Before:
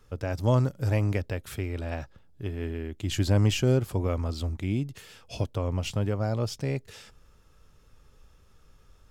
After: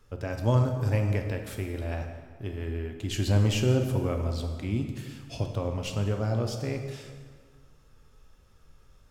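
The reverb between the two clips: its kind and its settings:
dense smooth reverb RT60 1.8 s, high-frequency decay 0.7×, DRR 4 dB
level −2 dB

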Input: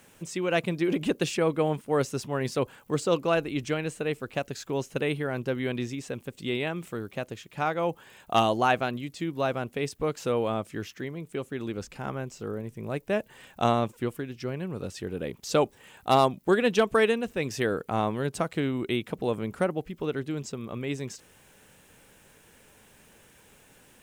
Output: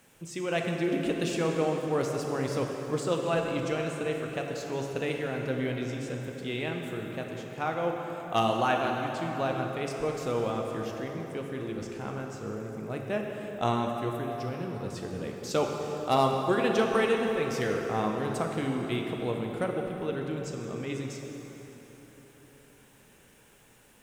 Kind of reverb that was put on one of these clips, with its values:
dense smooth reverb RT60 4.3 s, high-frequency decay 0.65×, DRR 1 dB
level −4.5 dB

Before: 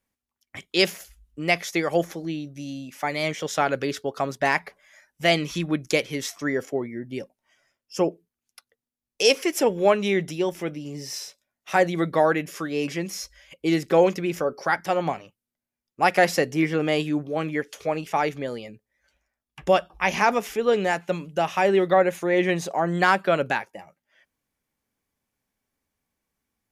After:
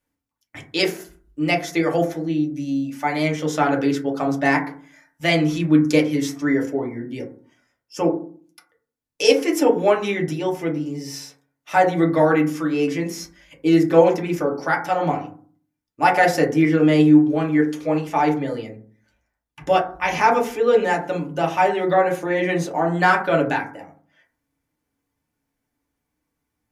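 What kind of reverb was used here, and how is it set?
feedback delay network reverb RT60 0.44 s, low-frequency decay 1.45×, high-frequency decay 0.3×, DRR −1.5 dB
level −1.5 dB

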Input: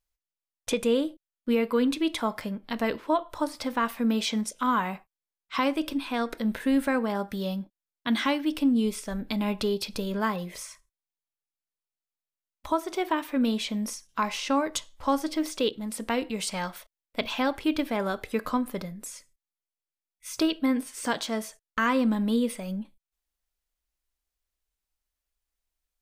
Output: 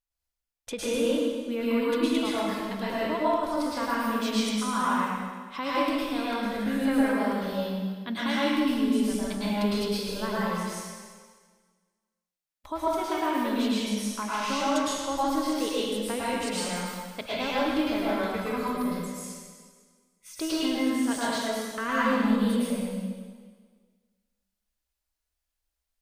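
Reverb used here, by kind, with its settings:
dense smooth reverb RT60 1.6 s, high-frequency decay 0.95×, pre-delay 95 ms, DRR −8.5 dB
level −8 dB

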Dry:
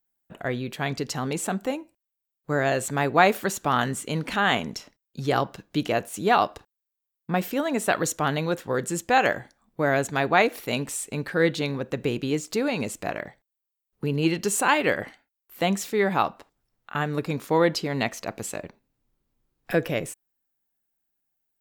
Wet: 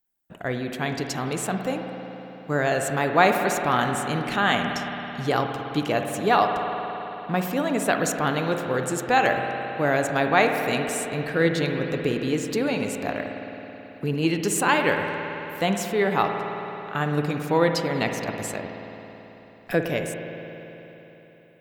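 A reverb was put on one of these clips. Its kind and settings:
spring reverb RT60 3.8 s, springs 54 ms, chirp 50 ms, DRR 4 dB

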